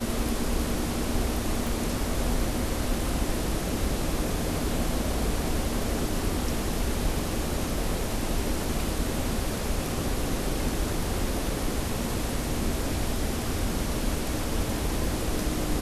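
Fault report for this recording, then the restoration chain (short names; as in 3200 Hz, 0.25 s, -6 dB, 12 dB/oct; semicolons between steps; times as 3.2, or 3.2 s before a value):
1.67 pop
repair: de-click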